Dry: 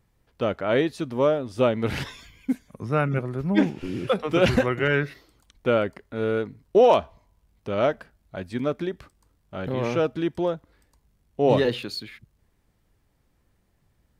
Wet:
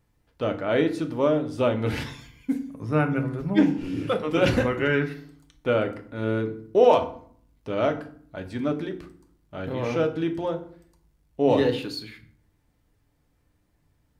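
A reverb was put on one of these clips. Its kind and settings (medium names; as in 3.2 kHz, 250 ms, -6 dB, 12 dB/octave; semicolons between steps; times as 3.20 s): FDN reverb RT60 0.54 s, low-frequency decay 1.55×, high-frequency decay 0.7×, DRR 5 dB; trim -2.5 dB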